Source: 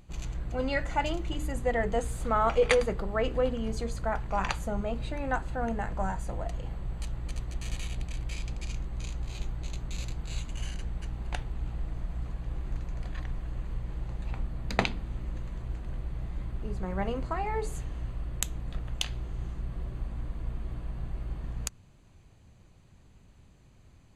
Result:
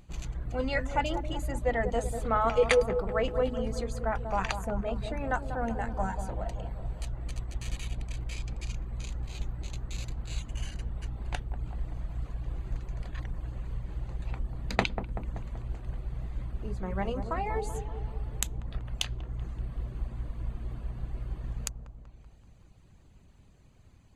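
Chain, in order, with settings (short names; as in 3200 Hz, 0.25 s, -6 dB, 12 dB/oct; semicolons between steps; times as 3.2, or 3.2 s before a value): reverb removal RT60 0.76 s; dark delay 0.191 s, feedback 56%, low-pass 1000 Hz, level -7.5 dB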